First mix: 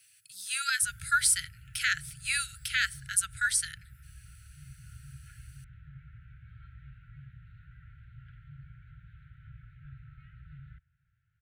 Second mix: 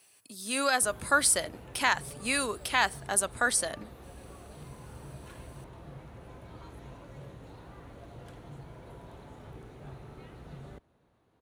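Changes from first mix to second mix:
background: remove Gaussian smoothing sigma 3.6 samples
master: remove linear-phase brick-wall band-stop 160–1,300 Hz

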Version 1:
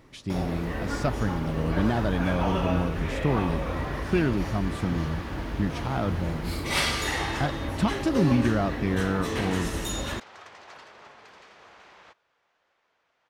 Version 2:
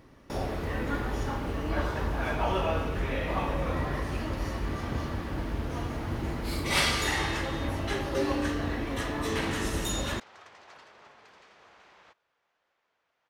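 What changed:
speech: muted
second sound −5.0 dB

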